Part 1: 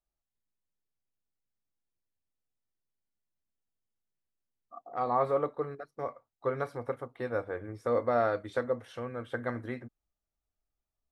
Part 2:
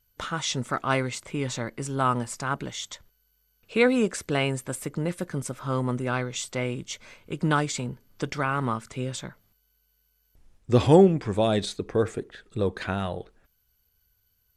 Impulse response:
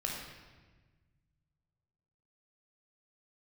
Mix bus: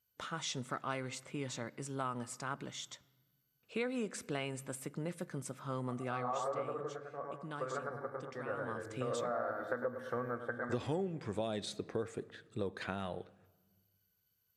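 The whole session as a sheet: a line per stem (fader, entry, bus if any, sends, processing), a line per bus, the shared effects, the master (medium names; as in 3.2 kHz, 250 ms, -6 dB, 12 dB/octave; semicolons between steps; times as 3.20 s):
+2.0 dB, 1.15 s, send -20 dB, echo send -13.5 dB, resonant high shelf 2 kHz -7.5 dB, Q 3; auto duck -15 dB, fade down 0.45 s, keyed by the second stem
6.09 s -10.5 dB -> 6.82 s -21.5 dB -> 8.49 s -21.5 dB -> 9.00 s -8.5 dB, 0.00 s, send -22 dB, no echo send, de-esser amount 45%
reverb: on, RT60 1.3 s, pre-delay 17 ms
echo: feedback delay 104 ms, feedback 40%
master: high-pass 120 Hz 12 dB/octave; compression 6:1, threshold -33 dBFS, peak gain reduction 13.5 dB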